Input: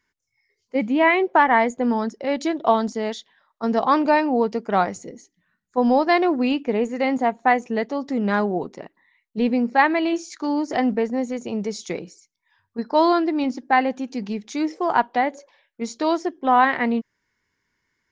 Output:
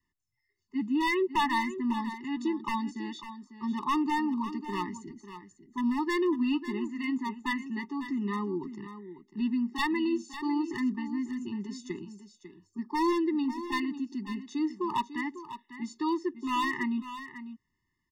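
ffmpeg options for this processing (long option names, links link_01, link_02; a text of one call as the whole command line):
ffmpeg -i in.wav -filter_complex "[0:a]lowshelf=frequency=230:gain=8.5,bandreject=frequency=5700:width=7.8,adynamicequalizer=threshold=0.0282:dfrequency=720:dqfactor=3.3:tfrequency=720:tqfactor=3.3:attack=5:release=100:ratio=0.375:range=2.5:mode=cutabove:tftype=bell,acrossover=split=230|2600[link_01][link_02][link_03];[link_01]acompressor=threshold=-40dB:ratio=6[link_04];[link_04][link_02][link_03]amix=inputs=3:normalize=0,aeval=exprs='0.299*(abs(mod(val(0)/0.299+3,4)-2)-1)':channel_layout=same,asplit=2[link_05][link_06];[link_06]aecho=0:1:548:0.251[link_07];[link_05][link_07]amix=inputs=2:normalize=0,afftfilt=real='re*eq(mod(floor(b*sr/1024/430),2),0)':imag='im*eq(mod(floor(b*sr/1024/430),2),0)':win_size=1024:overlap=0.75,volume=-7.5dB" out.wav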